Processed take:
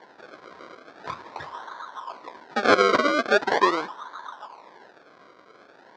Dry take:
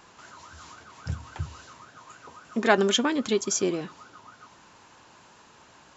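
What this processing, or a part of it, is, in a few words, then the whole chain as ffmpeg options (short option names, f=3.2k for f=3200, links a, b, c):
circuit-bent sampling toy: -af "acrusher=samples=34:mix=1:aa=0.000001:lfo=1:lforange=34:lforate=0.42,highpass=470,equalizer=f=1k:t=q:w=4:g=9,equalizer=f=1.6k:t=q:w=4:g=5,equalizer=f=2.8k:t=q:w=4:g=-8,lowpass=f=4.9k:w=0.5412,lowpass=f=4.9k:w=1.3066,volume=7dB"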